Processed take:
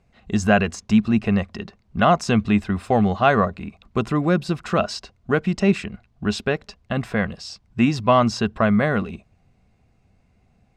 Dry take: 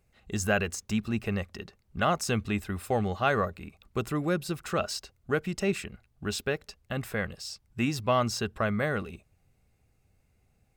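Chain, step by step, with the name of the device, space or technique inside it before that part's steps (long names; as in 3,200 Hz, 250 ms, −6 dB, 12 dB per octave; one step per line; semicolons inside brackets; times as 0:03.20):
inside a cardboard box (low-pass filter 5,400 Hz 12 dB per octave; hollow resonant body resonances 210/700/1,000 Hz, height 7 dB, ringing for 30 ms)
level +6.5 dB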